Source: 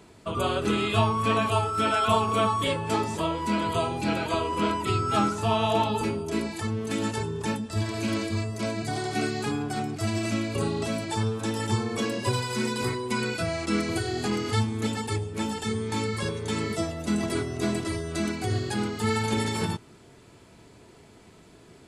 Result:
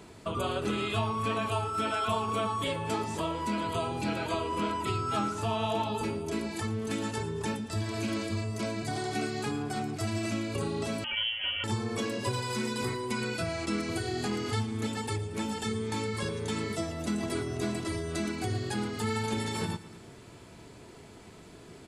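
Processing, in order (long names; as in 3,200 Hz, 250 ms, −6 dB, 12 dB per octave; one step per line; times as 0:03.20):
downward compressor 2 to 1, threshold −36 dBFS, peak gain reduction 10.5 dB
on a send: repeating echo 114 ms, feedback 57%, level −16.5 dB
0:11.04–0:11.64: on the sum: voice inversion scrambler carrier 3,200 Hz
level +2 dB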